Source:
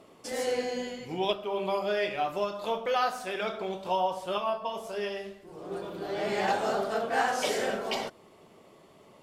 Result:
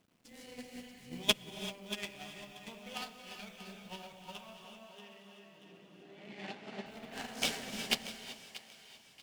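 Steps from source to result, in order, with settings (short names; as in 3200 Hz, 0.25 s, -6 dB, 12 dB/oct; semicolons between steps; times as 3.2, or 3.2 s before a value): Wiener smoothing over 9 samples; band shelf 760 Hz -15.5 dB 2.6 oct; added harmonics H 3 -11 dB, 4 -19 dB, 5 -26 dB, 6 -19 dB, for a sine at -20.5 dBFS; companded quantiser 6-bit; 4.57–6.86 BPF 190–4300 Hz; thinning echo 0.634 s, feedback 43%, high-pass 620 Hz, level -6 dB; non-linear reverb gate 0.41 s rising, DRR 2 dB; upward expander 2.5:1, over -47 dBFS; gain +13.5 dB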